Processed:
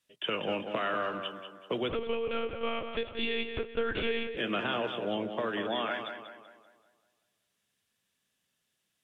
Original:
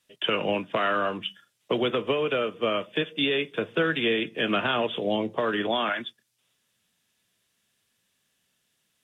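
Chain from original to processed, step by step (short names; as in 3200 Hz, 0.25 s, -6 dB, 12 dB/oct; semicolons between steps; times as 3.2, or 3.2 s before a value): tape echo 0.19 s, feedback 49%, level -6 dB, low-pass 2900 Hz; 1.89–4.37 monotone LPC vocoder at 8 kHz 230 Hz; gain -7 dB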